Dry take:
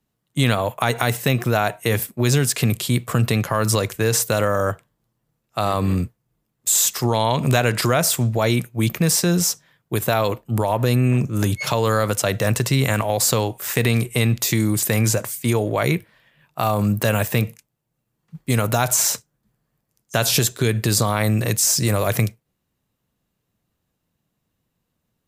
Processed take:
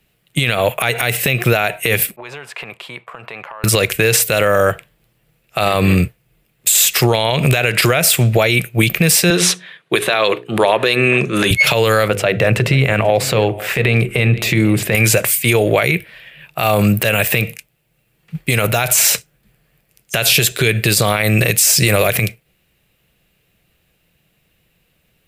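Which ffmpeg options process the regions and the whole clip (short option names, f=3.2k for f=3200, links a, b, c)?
-filter_complex "[0:a]asettb=1/sr,asplit=3[a][b][c];[a]atrim=end=2.164[d];[b]atrim=start=2.16:end=3.64,asetpts=PTS-STARTPTS,afade=t=in:d=0.004:c=qsin,afade=t=out:st=1.476:d=0.004:c=qsin,bandpass=f=960:t=q:w=4.5,acompressor=threshold=-40dB:ratio=5:attack=3.2:release=140:knee=1:detection=peak[e];[c]atrim=start=3.636[f];[d][e]acrossfade=d=0.004:c1=hsin:c2=qsin[g];[g][f]acrossfade=d=0.004:c1=qsin:c2=hsin,asettb=1/sr,asplit=3[h][i][j];[h]atrim=end=9.304[k];[i]atrim=start=9.3:end=11.51,asetpts=PTS-STARTPTS,afade=t=in:d=0.004:c=qsin,afade=t=out:st=2.206:d=0.004:c=qsin,highpass=220,equalizer=f=380:t=q:w=4:g=4,equalizer=f=1.1k:t=q:w=4:g=7,equalizer=f=1.7k:t=q:w=4:g=5,equalizer=f=3.7k:t=q:w=4:g=7,equalizer=f=5.3k:t=q:w=4:g=-5,equalizer=f=7.6k:t=q:w=4:g=-7,lowpass=f=9.5k:w=0.5412,lowpass=f=9.5k:w=1.3066,bandreject=f=60:t=h:w=6,bandreject=f=120:t=h:w=6,bandreject=f=180:t=h:w=6,bandreject=f=240:t=h:w=6,bandreject=f=300:t=h:w=6,bandreject=f=360:t=h:w=6,bandreject=f=420:t=h:w=6,bandreject=f=480:t=h:w=6[l];[j]atrim=start=11.506[m];[k][l]acrossfade=d=0.004:c1=hsin:c2=qsin[n];[n][m]acrossfade=d=0.004:c1=qsin:c2=hsin,asettb=1/sr,asplit=3[o][p][q];[o]atrim=end=12.084[r];[p]atrim=start=12.08:end=14.95,asetpts=PTS-STARTPTS,afade=t=in:d=0.004:c=qsin,afade=t=out:st=2.866:d=0.004:c=qsin,lowpass=f=1.2k:p=1,bandreject=f=50:t=h:w=6,bandreject=f=100:t=h:w=6,bandreject=f=150:t=h:w=6,bandreject=f=200:t=h:w=6,bandreject=f=250:t=h:w=6,bandreject=f=300:t=h:w=6,bandreject=f=350:t=h:w=6,bandreject=f=400:t=h:w=6,bandreject=f=450:t=h:w=6,bandreject=f=500:t=h:w=6,aecho=1:1:488:0.0841,atrim=end_sample=126567[s];[q]atrim=start=14.946[t];[r][s]acrossfade=d=0.004:c1=hsin:c2=qsin[u];[u][t]acrossfade=d=0.004:c1=qsin:c2=hsin,equalizer=f=100:t=o:w=0.67:g=-7,equalizer=f=250:t=o:w=0.67:g=-10,equalizer=f=1k:t=o:w=0.67:g=-9,equalizer=f=2.5k:t=o:w=0.67:g=9,equalizer=f=6.3k:t=o:w=0.67:g=-6,acompressor=threshold=-24dB:ratio=4,alimiter=level_in=16.5dB:limit=-1dB:release=50:level=0:latency=1,volume=-1dB"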